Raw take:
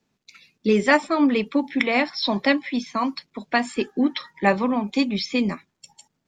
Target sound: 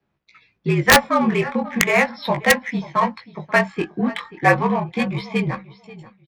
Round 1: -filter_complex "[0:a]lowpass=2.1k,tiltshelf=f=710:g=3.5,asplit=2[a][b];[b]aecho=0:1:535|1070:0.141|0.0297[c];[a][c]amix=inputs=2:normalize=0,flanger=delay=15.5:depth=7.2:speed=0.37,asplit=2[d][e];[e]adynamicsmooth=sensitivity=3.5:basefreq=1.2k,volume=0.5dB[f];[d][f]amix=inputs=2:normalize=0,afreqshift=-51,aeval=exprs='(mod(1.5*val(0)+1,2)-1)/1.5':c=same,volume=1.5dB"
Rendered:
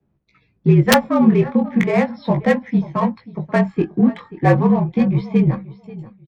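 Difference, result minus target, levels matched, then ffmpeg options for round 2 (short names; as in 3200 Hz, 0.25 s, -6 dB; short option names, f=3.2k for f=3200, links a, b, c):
1000 Hz band -4.5 dB
-filter_complex "[0:a]lowpass=2.1k,tiltshelf=f=710:g=-6.5,asplit=2[a][b];[b]aecho=0:1:535|1070:0.141|0.0297[c];[a][c]amix=inputs=2:normalize=0,flanger=delay=15.5:depth=7.2:speed=0.37,asplit=2[d][e];[e]adynamicsmooth=sensitivity=3.5:basefreq=1.2k,volume=0.5dB[f];[d][f]amix=inputs=2:normalize=0,afreqshift=-51,aeval=exprs='(mod(1.5*val(0)+1,2)-1)/1.5':c=same,volume=1.5dB"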